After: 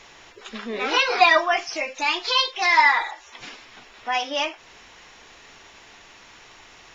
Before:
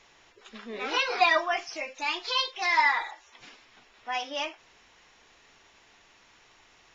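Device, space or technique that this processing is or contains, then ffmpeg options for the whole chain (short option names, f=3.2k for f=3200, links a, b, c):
parallel compression: -filter_complex "[0:a]asplit=2[a][b];[b]acompressor=threshold=-43dB:ratio=6,volume=-2.5dB[c];[a][c]amix=inputs=2:normalize=0,volume=6dB"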